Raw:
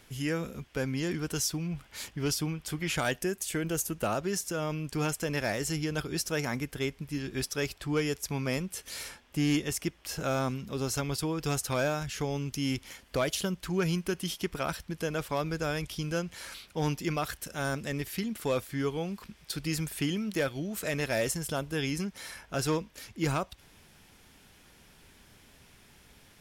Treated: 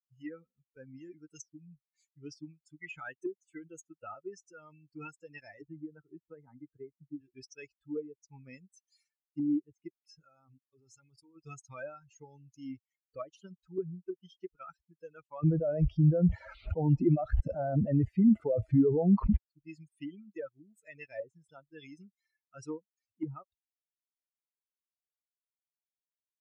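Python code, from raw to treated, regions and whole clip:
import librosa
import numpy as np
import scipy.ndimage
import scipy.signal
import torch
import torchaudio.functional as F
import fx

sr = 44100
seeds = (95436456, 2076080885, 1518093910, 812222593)

y = fx.chain(x, sr, fx.lowpass(hz=1400.0, slope=12),
    fx.band_squash(depth_pct=100), at=(5.61, 7.21))
y = fx.chain(y, sr, fx.hum_notches(base_hz=50, count=6),
    fx.level_steps(step_db=18), at=(10.23, 11.36))
y = fx.chain(y, sr, fx.peak_eq(hz=640.0, db=12.0, octaves=0.3),
    fx.env_flatten(amount_pct=100), at=(15.43, 19.37))
y = fx.bin_expand(y, sr, power=3.0)
y = scipy.signal.sosfilt(scipy.signal.butter(2, 9200.0, 'lowpass', fs=sr, output='sos'), y)
y = fx.env_lowpass_down(y, sr, base_hz=390.0, full_db=-37.0)
y = F.gain(torch.from_numpy(y), 5.0).numpy()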